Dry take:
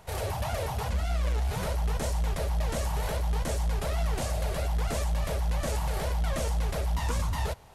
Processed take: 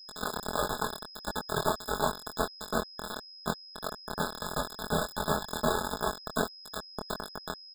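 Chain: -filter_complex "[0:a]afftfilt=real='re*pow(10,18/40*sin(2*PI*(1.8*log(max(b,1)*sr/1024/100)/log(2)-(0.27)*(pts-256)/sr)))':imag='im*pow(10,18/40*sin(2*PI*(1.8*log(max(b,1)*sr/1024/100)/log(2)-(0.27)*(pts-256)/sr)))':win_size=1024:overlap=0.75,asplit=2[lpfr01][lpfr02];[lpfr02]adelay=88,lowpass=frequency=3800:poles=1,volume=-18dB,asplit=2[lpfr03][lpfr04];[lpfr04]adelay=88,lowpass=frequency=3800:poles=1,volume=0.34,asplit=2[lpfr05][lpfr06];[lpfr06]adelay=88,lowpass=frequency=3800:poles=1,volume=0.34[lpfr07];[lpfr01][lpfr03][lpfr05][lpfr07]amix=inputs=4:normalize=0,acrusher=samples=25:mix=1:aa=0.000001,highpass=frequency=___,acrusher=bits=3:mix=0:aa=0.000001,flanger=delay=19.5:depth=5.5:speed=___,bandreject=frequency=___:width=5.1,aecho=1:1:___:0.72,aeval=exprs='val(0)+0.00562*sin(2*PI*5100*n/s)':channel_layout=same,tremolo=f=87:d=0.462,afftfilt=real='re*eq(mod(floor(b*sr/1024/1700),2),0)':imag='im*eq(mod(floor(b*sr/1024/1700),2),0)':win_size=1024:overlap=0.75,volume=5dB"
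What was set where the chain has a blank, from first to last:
130, 1.5, 4500, 4.7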